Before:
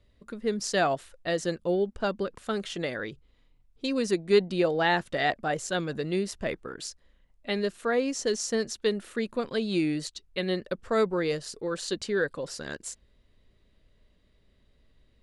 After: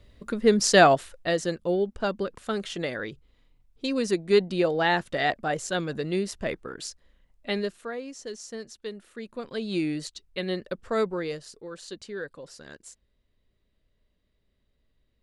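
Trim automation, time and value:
0.83 s +9 dB
1.48 s +1 dB
7.57 s +1 dB
7.98 s -10 dB
9.11 s -10 dB
9.74 s -1 dB
11.03 s -1 dB
11.67 s -8.5 dB

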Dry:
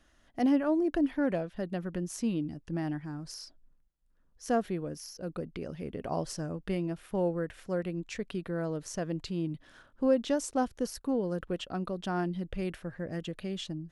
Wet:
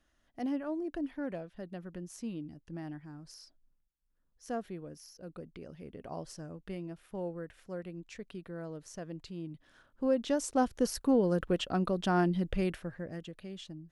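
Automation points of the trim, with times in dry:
9.53 s -8.5 dB
10.93 s +4 dB
12.56 s +4 dB
13.32 s -8 dB

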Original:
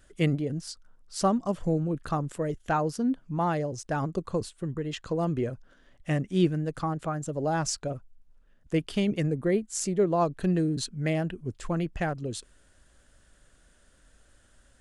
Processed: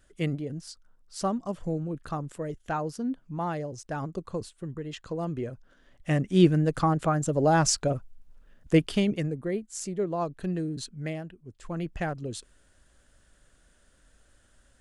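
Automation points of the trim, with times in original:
5.49 s -4 dB
6.59 s +6 dB
8.77 s +6 dB
9.39 s -5 dB
11.06 s -5 dB
11.39 s -14 dB
11.88 s -1.5 dB

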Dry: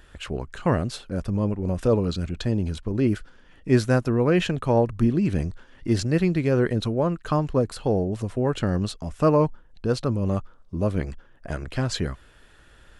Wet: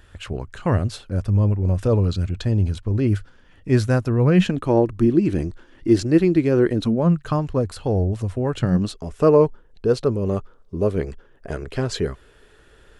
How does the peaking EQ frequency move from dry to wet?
peaking EQ +11.5 dB 0.42 oct
4.15 s 98 Hz
4.64 s 330 Hz
6.70 s 330 Hz
7.47 s 90 Hz
8.53 s 90 Hz
8.99 s 420 Hz

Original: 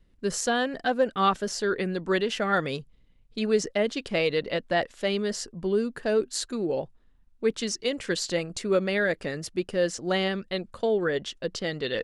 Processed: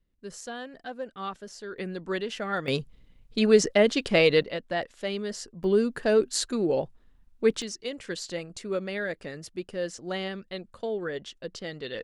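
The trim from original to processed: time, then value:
-12.5 dB
from 1.78 s -5.5 dB
from 2.68 s +5 dB
from 4.43 s -4.5 dB
from 5.64 s +2.5 dB
from 7.62 s -6.5 dB

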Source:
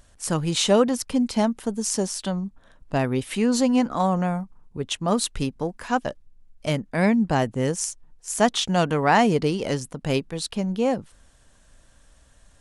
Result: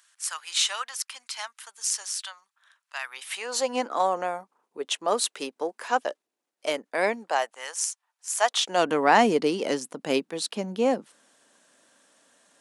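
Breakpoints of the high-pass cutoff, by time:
high-pass 24 dB/octave
3.07 s 1.2 kHz
3.78 s 370 Hz
7.10 s 370 Hz
7.61 s 860 Hz
8.33 s 860 Hz
8.89 s 240 Hz

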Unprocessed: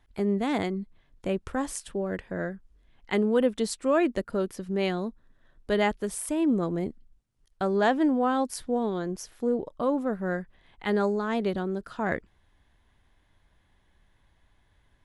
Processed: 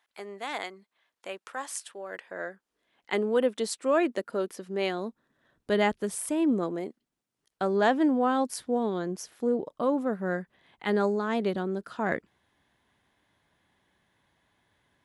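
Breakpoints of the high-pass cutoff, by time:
1.96 s 810 Hz
3.12 s 300 Hz
4.93 s 300 Hz
5.71 s 98 Hz
6.23 s 98 Hz
6.83 s 360 Hz
7.99 s 150 Hz

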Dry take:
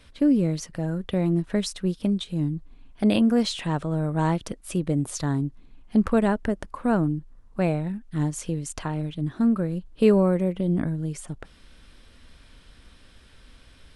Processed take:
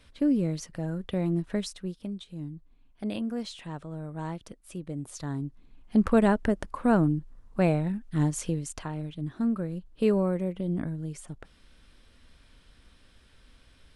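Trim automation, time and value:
1.53 s -4.5 dB
2.05 s -12 dB
4.88 s -12 dB
6.20 s 0 dB
8.45 s 0 dB
8.85 s -6 dB

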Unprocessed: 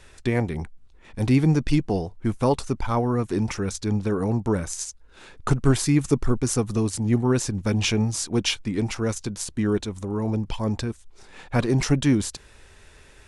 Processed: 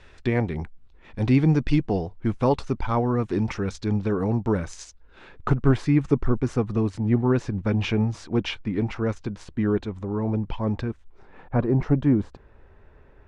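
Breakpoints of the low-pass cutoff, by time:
4.80 s 3.8 kHz
5.57 s 2.3 kHz
10.85 s 2.3 kHz
11.55 s 1.1 kHz

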